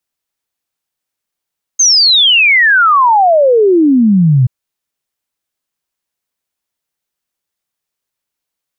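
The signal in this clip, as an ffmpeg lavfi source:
-f lavfi -i "aevalsrc='0.562*clip(min(t,2.68-t)/0.01,0,1)*sin(2*PI*6500*2.68/log(120/6500)*(exp(log(120/6500)*t/2.68)-1))':d=2.68:s=44100"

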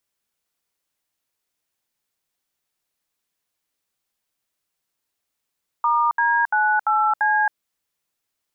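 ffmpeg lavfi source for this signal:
-f lavfi -i "aevalsrc='0.119*clip(min(mod(t,0.342),0.271-mod(t,0.342))/0.002,0,1)*(eq(floor(t/0.342),0)*(sin(2*PI*941*mod(t,0.342))+sin(2*PI*1209*mod(t,0.342)))+eq(floor(t/0.342),1)*(sin(2*PI*941*mod(t,0.342))+sin(2*PI*1633*mod(t,0.342)))+eq(floor(t/0.342),2)*(sin(2*PI*852*mod(t,0.342))+sin(2*PI*1477*mod(t,0.342)))+eq(floor(t/0.342),3)*(sin(2*PI*852*mod(t,0.342))+sin(2*PI*1336*mod(t,0.342)))+eq(floor(t/0.342),4)*(sin(2*PI*852*mod(t,0.342))+sin(2*PI*1633*mod(t,0.342))))':d=1.71:s=44100"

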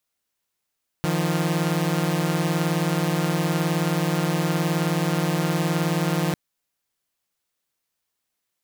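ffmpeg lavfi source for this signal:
-f lavfi -i "aevalsrc='0.0891*((2*mod(155.56*t,1)-1)+(2*mod(174.61*t,1)-1))':d=5.3:s=44100"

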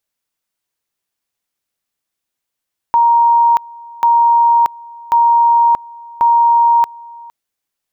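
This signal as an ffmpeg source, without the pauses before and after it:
-f lavfi -i "aevalsrc='pow(10,(-7-24*gte(mod(t,1.09),0.63))/20)*sin(2*PI*937*t)':d=4.36:s=44100"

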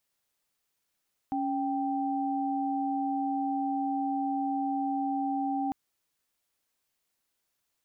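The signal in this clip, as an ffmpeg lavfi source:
-f lavfi -i "aevalsrc='0.0316*(sin(2*PI*277.18*t)+sin(2*PI*783.99*t))':d=4.4:s=44100"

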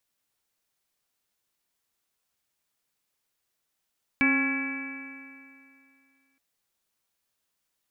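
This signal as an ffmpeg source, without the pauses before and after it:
-f lavfi -i "aevalsrc='0.0794*pow(10,-3*t/2.47)*sin(2*PI*268.32*t)+0.01*pow(10,-3*t/2.47)*sin(2*PI*538.57*t)+0.0126*pow(10,-3*t/2.47)*sin(2*PI*812.64*t)+0.0168*pow(10,-3*t/2.47)*sin(2*PI*1092.39*t)+0.0126*pow(10,-3*t/2.47)*sin(2*PI*1379.61*t)+0.0422*pow(10,-3*t/2.47)*sin(2*PI*1676.03*t)+0.0112*pow(10,-3*t/2.47)*sin(2*PI*1983.24*t)+0.0891*pow(10,-3*t/2.47)*sin(2*PI*2302.78*t)+0.0141*pow(10,-3*t/2.47)*sin(2*PI*2636.04*t)':d=2.17:s=44100"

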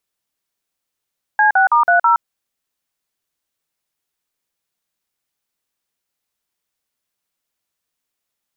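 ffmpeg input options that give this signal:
-f lavfi -i "aevalsrc='0.251*clip(min(mod(t,0.163),0.118-mod(t,0.163))/0.002,0,1)*(eq(floor(t/0.163),0)*(sin(2*PI*852*mod(t,0.163))+sin(2*PI*1633*mod(t,0.163)))+eq(floor(t/0.163),1)*(sin(2*PI*770*mod(t,0.163))+sin(2*PI*1477*mod(t,0.163)))+eq(floor(t/0.163),2)*(sin(2*PI*941*mod(t,0.163))+sin(2*PI*1209*mod(t,0.163)))+eq(floor(t/0.163),3)*(sin(2*PI*697*mod(t,0.163))+sin(2*PI*1477*mod(t,0.163)))+eq(floor(t/0.163),4)*(sin(2*PI*941*mod(t,0.163))+sin(2*PI*1336*mod(t,0.163))))':d=0.815:s=44100"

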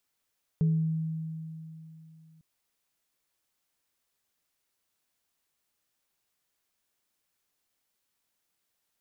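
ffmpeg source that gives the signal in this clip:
-f lavfi -i "aevalsrc='0.0944*pow(10,-3*t/3.09)*sin(2*PI*160*t)+0.0133*pow(10,-3*t/0.53)*sin(2*PI*424*t)':d=1.8:s=44100"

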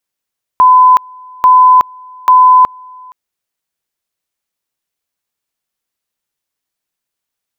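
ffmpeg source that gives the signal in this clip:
-f lavfi -i "aevalsrc='pow(10,(-2-28.5*gte(mod(t,0.84),0.37))/20)*sin(2*PI*1010*t)':d=2.52:s=44100"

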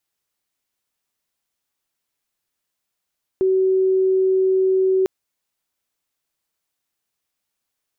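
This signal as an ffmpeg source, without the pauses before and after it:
-f lavfi -i "sine=f=378:d=1.65:r=44100,volume=4.06dB"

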